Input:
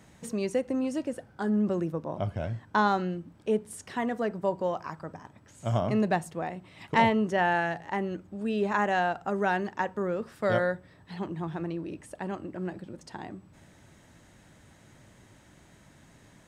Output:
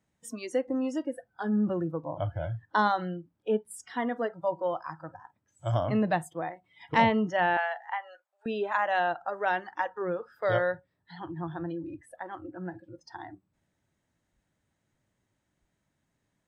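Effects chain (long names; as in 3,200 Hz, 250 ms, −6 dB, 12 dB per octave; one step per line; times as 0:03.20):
noise reduction from a noise print of the clip's start 22 dB
0:07.57–0:08.46: Butterworth high-pass 580 Hz 48 dB per octave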